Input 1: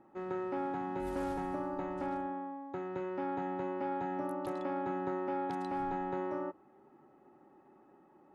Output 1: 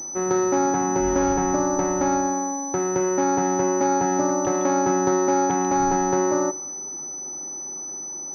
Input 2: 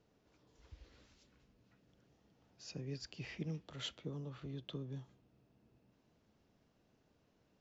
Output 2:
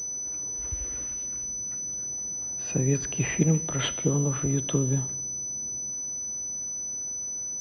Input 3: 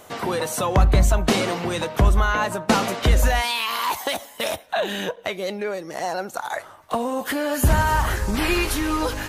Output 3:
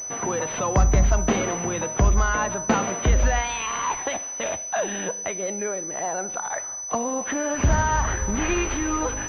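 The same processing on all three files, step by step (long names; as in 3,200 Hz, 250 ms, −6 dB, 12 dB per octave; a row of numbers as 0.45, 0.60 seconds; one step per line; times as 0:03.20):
four-comb reverb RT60 1.1 s, combs from 31 ms, DRR 17 dB
switching amplifier with a slow clock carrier 6,000 Hz
normalise the peak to −9 dBFS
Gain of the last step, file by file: +15.0, +19.5, −2.0 decibels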